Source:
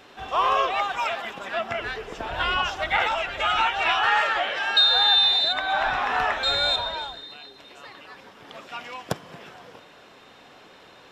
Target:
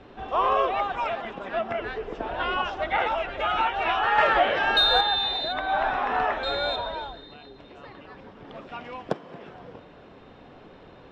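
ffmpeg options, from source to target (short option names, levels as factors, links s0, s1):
-filter_complex "[0:a]acrossover=split=230[s0][s1];[s0]acompressor=threshold=0.00158:ratio=6[s2];[s1]lowpass=4100[s3];[s2][s3]amix=inputs=2:normalize=0,lowshelf=f=71:g=10,asettb=1/sr,asplit=3[s4][s5][s6];[s4]atrim=end=4.184[s7];[s5]atrim=start=4.18:end=5.01,asetpts=PTS-STARTPTS,afade=t=in:d=0.004:c=qsin,afade=t=out:st=0.826:d=0.004:c=qsin,acontrast=44[s8];[s6]atrim=start=5.006[s9];[s7][s8]acrossfade=d=0.004:c1=hsin:c2=qsin[s10];[s10][s9]acrossfade=d=0.004:c1=qsin:c2=hsin,tiltshelf=f=810:g=7"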